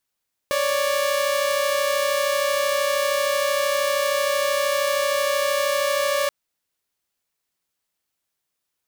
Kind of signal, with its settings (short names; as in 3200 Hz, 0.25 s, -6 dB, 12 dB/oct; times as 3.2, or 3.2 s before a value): chord C#5/D5 saw, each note -20 dBFS 5.78 s